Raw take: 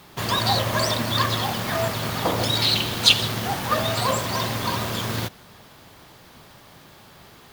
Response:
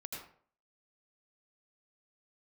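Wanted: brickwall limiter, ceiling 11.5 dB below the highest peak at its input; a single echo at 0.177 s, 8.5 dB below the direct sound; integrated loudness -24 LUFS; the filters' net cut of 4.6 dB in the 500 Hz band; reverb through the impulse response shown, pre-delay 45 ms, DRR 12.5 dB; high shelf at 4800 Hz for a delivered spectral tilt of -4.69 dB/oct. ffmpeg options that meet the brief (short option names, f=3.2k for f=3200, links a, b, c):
-filter_complex "[0:a]equalizer=f=500:t=o:g=-6,highshelf=f=4.8k:g=-7,alimiter=limit=-16dB:level=0:latency=1,aecho=1:1:177:0.376,asplit=2[a][b];[1:a]atrim=start_sample=2205,adelay=45[c];[b][c]afir=irnorm=-1:irlink=0,volume=-11dB[d];[a][d]amix=inputs=2:normalize=0,volume=1.5dB"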